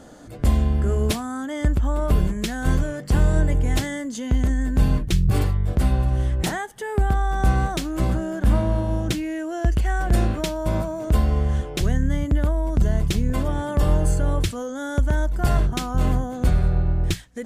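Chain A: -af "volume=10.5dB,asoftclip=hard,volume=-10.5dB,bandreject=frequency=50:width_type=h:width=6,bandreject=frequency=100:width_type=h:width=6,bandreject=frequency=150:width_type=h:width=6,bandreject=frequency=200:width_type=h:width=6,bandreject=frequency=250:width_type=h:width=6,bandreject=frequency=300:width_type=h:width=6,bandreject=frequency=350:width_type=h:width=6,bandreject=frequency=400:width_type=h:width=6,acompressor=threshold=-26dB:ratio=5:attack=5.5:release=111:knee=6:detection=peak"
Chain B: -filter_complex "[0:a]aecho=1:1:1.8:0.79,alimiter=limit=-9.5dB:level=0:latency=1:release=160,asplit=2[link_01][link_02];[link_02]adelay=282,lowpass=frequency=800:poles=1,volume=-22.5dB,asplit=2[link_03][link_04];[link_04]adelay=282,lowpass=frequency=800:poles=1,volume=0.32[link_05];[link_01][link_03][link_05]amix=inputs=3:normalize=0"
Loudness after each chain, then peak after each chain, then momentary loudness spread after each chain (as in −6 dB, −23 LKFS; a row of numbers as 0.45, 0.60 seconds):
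−31.0, −21.5 LKFS; −13.5, −9.0 dBFS; 2, 5 LU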